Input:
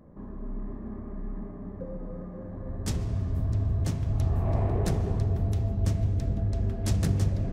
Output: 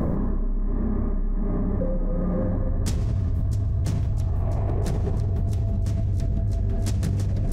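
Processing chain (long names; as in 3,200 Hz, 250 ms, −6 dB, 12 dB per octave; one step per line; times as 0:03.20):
low-shelf EQ 76 Hz +8 dB
delay with a high-pass on its return 653 ms, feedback 63%, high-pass 4,500 Hz, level −11 dB
envelope flattener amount 100%
level −5 dB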